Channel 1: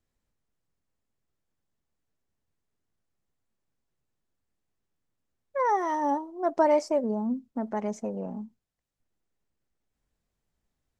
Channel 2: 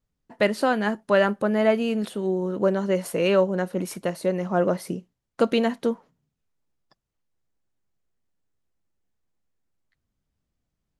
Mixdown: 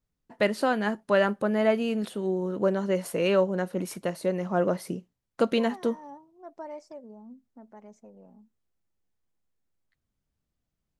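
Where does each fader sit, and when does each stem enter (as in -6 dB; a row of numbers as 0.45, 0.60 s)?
-18.0, -3.0 dB; 0.00, 0.00 s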